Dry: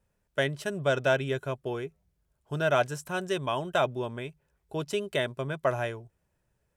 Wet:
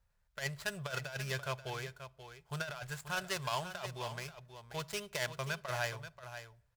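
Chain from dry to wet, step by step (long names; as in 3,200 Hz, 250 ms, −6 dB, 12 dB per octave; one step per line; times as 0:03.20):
running median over 15 samples
guitar amp tone stack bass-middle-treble 10-0-10
compressor whose output falls as the input rises −41 dBFS, ratio −0.5
single-tap delay 533 ms −11 dB
on a send at −20 dB: convolution reverb RT60 0.60 s, pre-delay 6 ms
on the sum: level +5.5 dB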